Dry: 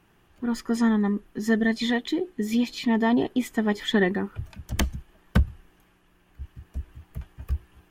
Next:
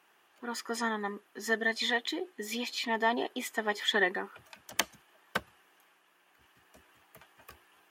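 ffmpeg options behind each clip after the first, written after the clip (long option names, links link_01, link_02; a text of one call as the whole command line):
ffmpeg -i in.wav -af "highpass=600" out.wav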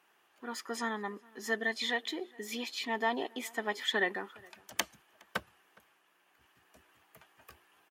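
ffmpeg -i in.wav -filter_complex "[0:a]asplit=2[link_01][link_02];[link_02]adelay=414,volume=-25dB,highshelf=frequency=4000:gain=-9.32[link_03];[link_01][link_03]amix=inputs=2:normalize=0,volume=-3dB" out.wav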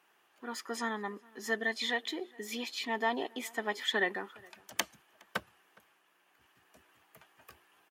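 ffmpeg -i in.wav -af "highpass=75" out.wav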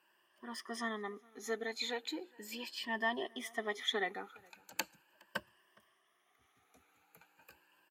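ffmpeg -i in.wav -af "afftfilt=real='re*pow(10,12/40*sin(2*PI*(1.3*log(max(b,1)*sr/1024/100)/log(2)-(0.38)*(pts-256)/sr)))':imag='im*pow(10,12/40*sin(2*PI*(1.3*log(max(b,1)*sr/1024/100)/log(2)-(0.38)*(pts-256)/sr)))':win_size=1024:overlap=0.75,volume=-6dB" out.wav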